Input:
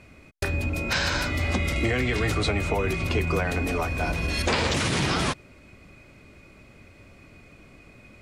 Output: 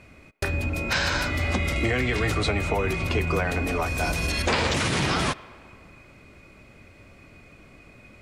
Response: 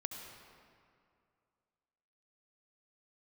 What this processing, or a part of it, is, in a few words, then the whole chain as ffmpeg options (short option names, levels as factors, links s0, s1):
filtered reverb send: -filter_complex "[0:a]asettb=1/sr,asplit=3[s0][s1][s2];[s0]atrim=end=3.864[s3];[s1]atrim=start=3.86:end=4.32,asetpts=PTS-STARTPTS,afade=t=in:d=0.004:c=qsin,afade=t=out:st=0.456:d=0.004:c=qsin,bass=f=250:g=0,treble=f=4000:g=11[s4];[s2]atrim=start=4.316[s5];[s3][s4]acrossfade=d=0.004:c1=hsin:c2=qsin[s6];[s6][s5]acrossfade=d=0.004:c1=qsin:c2=hsin,asplit=2[s7][s8];[s8]highpass=440,lowpass=3300[s9];[1:a]atrim=start_sample=2205[s10];[s9][s10]afir=irnorm=-1:irlink=0,volume=0.251[s11];[s7][s11]amix=inputs=2:normalize=0"